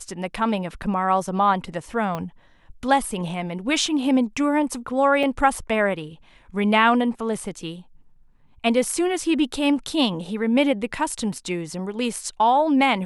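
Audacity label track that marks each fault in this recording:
2.150000	2.150000	click −15 dBFS
5.230000	5.230000	drop-out 3.4 ms

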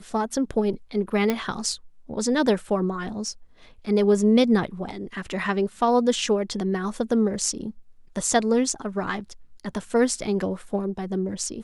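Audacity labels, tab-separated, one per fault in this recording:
1.300000	1.300000	click −9 dBFS

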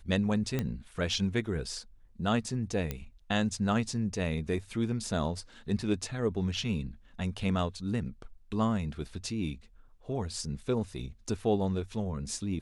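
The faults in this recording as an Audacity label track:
0.590000	0.590000	click −17 dBFS
2.910000	2.910000	click −18 dBFS

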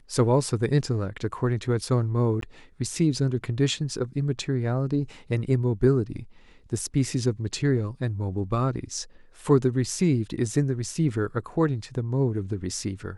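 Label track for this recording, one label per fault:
2.410000	2.420000	drop-out

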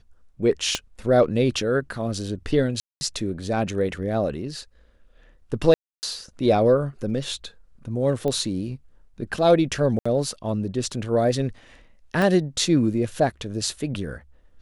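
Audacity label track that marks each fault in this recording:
0.750000	0.750000	click −9 dBFS
2.800000	3.010000	drop-out 210 ms
5.740000	6.030000	drop-out 289 ms
8.280000	8.280000	click −16 dBFS
9.990000	10.050000	drop-out 65 ms
12.220000	12.220000	click

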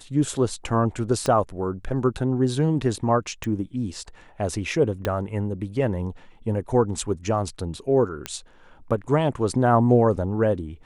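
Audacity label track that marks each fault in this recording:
1.260000	1.260000	click −12 dBFS
3.440000	3.440000	click
5.050000	5.050000	click −11 dBFS
8.260000	8.260000	click −12 dBFS

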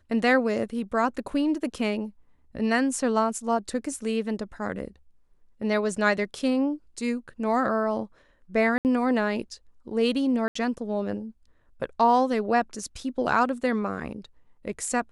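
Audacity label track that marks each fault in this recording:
8.780000	8.850000	drop-out 69 ms
10.480000	10.550000	drop-out 74 ms

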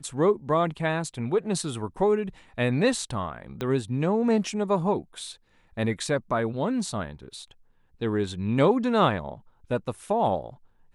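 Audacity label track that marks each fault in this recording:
3.610000	3.610000	click −17 dBFS

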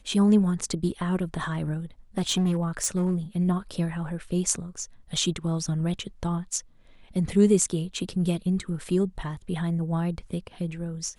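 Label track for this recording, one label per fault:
2.180000	3.150000	clipping −19.5 dBFS

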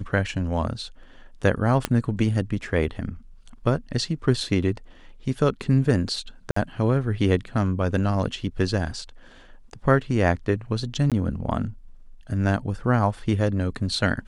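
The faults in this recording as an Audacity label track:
1.850000	1.850000	click −7 dBFS
6.510000	6.560000	drop-out 54 ms
11.100000	11.120000	drop-out 17 ms

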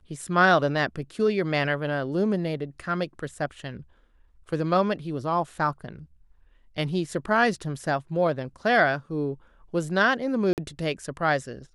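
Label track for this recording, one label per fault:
10.530000	10.580000	drop-out 48 ms

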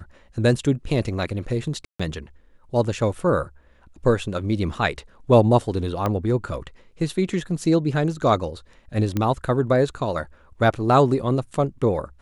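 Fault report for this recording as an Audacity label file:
1.850000	2.000000	drop-out 145 ms
6.060000	6.060000	click −11 dBFS
9.170000	9.170000	click −11 dBFS

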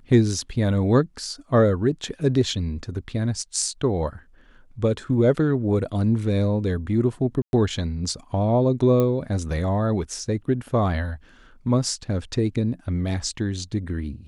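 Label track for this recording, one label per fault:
7.420000	7.530000	drop-out 111 ms
9.000000	9.000000	click −11 dBFS

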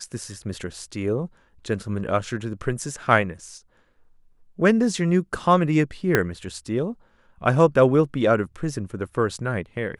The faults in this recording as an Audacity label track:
6.150000	6.150000	click −4 dBFS

